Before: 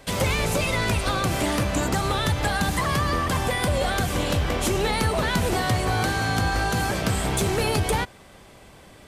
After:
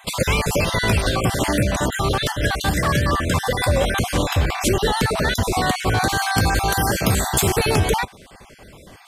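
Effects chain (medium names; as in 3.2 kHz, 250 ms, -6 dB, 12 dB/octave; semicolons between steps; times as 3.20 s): random holes in the spectrogram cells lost 35%; 6.09–7.59 s: treble shelf 9 kHz +11.5 dB; trim +5.5 dB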